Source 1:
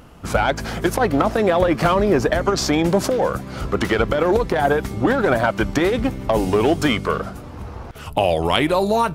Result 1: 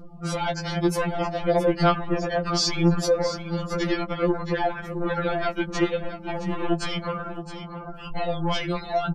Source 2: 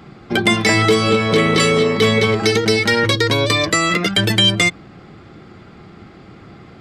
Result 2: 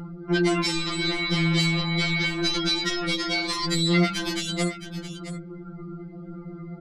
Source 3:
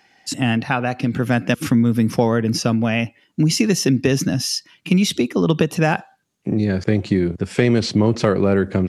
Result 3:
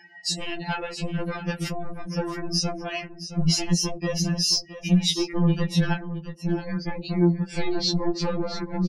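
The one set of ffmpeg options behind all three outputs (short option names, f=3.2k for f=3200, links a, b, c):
-af "aeval=exprs='0.398*(abs(mod(val(0)/0.398+3,4)-2)-1)':c=same,acompressor=threshold=-24dB:ratio=2,asoftclip=type=hard:threshold=-21.5dB,lowshelf=f=97:g=8,acompressor=mode=upward:threshold=-34dB:ratio=2.5,afftdn=nr=30:nf=-39,equalizer=f=4.5k:w=1.7:g=6.5,aecho=1:1:669:0.251,afftfilt=real='re*2.83*eq(mod(b,8),0)':imag='im*2.83*eq(mod(b,8),0)':win_size=2048:overlap=0.75,volume=2dB"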